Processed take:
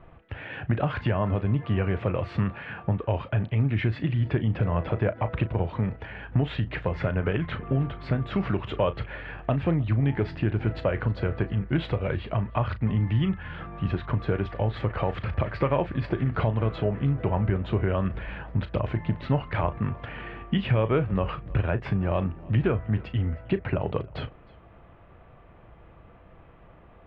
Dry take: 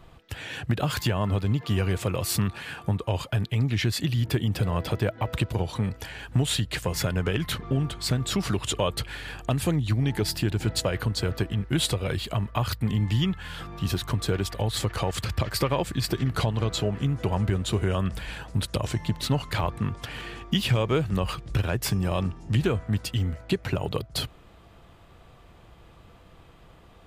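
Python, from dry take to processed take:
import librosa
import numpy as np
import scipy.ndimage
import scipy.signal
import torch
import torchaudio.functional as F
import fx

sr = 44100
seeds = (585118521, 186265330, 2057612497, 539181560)

y = scipy.signal.sosfilt(scipy.signal.butter(4, 2400.0, 'lowpass', fs=sr, output='sos'), x)
y = fx.peak_eq(y, sr, hz=600.0, db=3.5, octaves=0.37)
y = fx.doubler(y, sr, ms=36.0, db=-13.0)
y = y + 10.0 ** (-24.0 / 20.0) * np.pad(y, (int(314 * sr / 1000.0), 0))[:len(y)]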